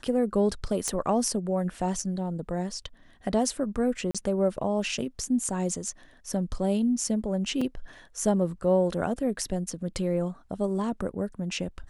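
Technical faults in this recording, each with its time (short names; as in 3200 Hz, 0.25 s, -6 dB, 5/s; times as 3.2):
0.88 pop -14 dBFS
4.11–4.15 gap 36 ms
7.61 gap 4.5 ms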